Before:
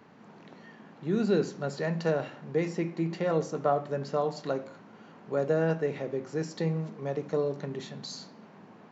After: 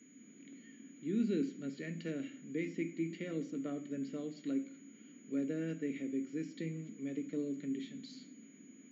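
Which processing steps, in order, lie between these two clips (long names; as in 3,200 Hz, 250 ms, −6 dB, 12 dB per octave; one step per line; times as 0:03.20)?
formant filter i
steady tone 6,800 Hz −70 dBFS
level +5.5 dB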